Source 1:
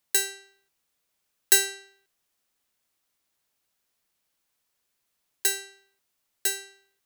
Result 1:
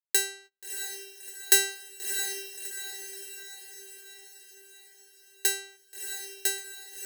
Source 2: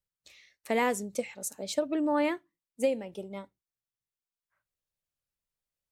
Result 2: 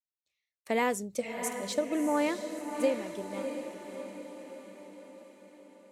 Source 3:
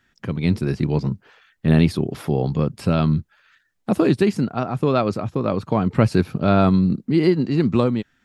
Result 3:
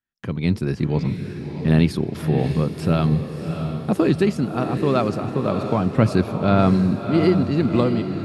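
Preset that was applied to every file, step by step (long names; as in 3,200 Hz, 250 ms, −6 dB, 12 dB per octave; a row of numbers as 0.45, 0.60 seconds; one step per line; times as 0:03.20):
noise gate −50 dBFS, range −27 dB
feedback delay with all-pass diffusion 651 ms, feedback 55%, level −7.5 dB
level −1 dB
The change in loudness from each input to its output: −4.0, −1.5, −0.5 LU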